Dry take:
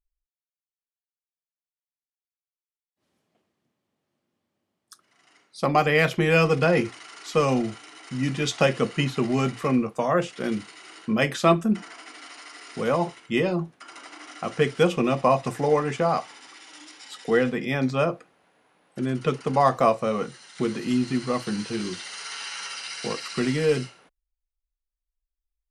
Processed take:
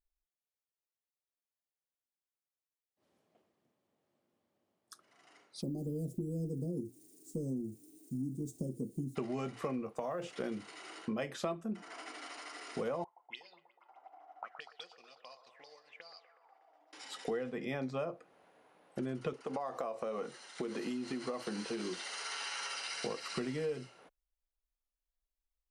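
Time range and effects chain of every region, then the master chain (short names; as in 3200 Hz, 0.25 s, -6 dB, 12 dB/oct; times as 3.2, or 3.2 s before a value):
5.61–9.15 median filter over 3 samples + Chebyshev band-stop 310–8300 Hz, order 3 + added noise violet -60 dBFS
9.85–10.37 block floating point 7-bit + compressor 4:1, threshold -24 dBFS
13.04–16.93 transient shaper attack +3 dB, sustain -7 dB + auto-wah 610–4600 Hz, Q 11, up, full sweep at -19 dBFS + band-limited delay 0.122 s, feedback 72%, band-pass 790 Hz, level -10.5 dB
19.33–22.94 HPF 230 Hz + compressor 4:1, threshold -27 dBFS
whole clip: bell 570 Hz +7 dB 1.9 oct; compressor 6:1, threshold -29 dBFS; gain -6 dB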